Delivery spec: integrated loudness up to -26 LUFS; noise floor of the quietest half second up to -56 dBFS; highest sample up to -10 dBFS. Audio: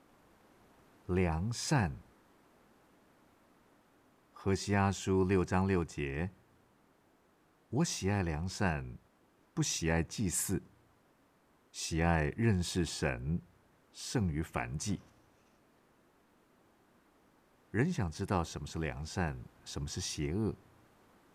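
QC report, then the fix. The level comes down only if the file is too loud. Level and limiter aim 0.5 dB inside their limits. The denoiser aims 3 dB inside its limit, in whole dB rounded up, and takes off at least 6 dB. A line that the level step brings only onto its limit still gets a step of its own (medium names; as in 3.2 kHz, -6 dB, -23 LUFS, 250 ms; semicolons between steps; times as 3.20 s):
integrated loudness -34.5 LUFS: pass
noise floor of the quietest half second -69 dBFS: pass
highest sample -17.5 dBFS: pass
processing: none needed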